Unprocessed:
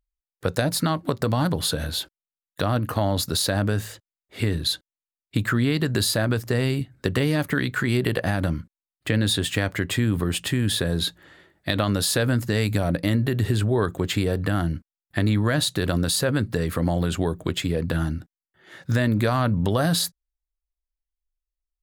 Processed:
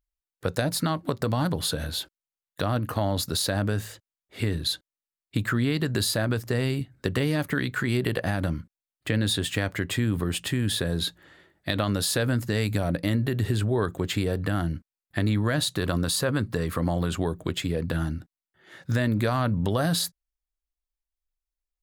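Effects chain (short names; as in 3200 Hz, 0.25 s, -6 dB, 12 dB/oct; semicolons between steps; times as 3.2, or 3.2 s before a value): 15.73–17.27 bell 1100 Hz +5.5 dB 0.4 oct; gain -3 dB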